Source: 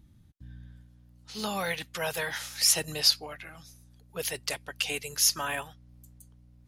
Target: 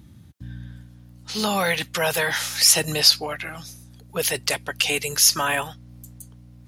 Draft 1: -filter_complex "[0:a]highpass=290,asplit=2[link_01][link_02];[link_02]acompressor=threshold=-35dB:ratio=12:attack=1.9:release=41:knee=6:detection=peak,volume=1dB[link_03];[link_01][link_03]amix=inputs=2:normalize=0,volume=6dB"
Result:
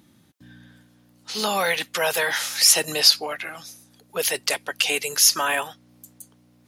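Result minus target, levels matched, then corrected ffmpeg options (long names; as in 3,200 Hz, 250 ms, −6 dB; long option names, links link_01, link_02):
125 Hz band −11.0 dB
-filter_complex "[0:a]highpass=79,asplit=2[link_01][link_02];[link_02]acompressor=threshold=-35dB:ratio=12:attack=1.9:release=41:knee=6:detection=peak,volume=1dB[link_03];[link_01][link_03]amix=inputs=2:normalize=0,volume=6dB"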